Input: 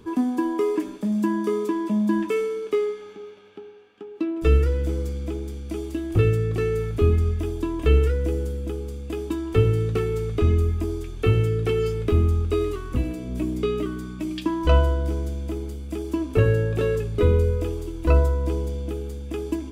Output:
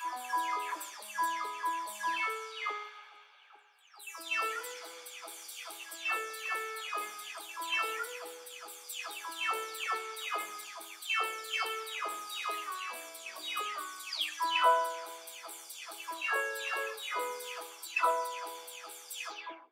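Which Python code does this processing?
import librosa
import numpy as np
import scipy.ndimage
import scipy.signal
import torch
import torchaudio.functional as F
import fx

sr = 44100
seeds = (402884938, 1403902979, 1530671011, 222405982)

p1 = fx.spec_delay(x, sr, highs='early', ms=419)
p2 = scipy.signal.sosfilt(scipy.signal.butter(4, 840.0, 'highpass', fs=sr, output='sos'), p1)
p3 = fx.hpss(p2, sr, part='percussive', gain_db=4)
p4 = fx.rider(p3, sr, range_db=3, speed_s=0.5)
p5 = p3 + (p4 * 10.0 ** (-0.5 / 20.0))
p6 = fx.echo_feedback(p5, sr, ms=63, feedback_pct=56, wet_db=-21.5)
p7 = fx.band_widen(p6, sr, depth_pct=40)
y = p7 * 10.0 ** (-3.0 / 20.0)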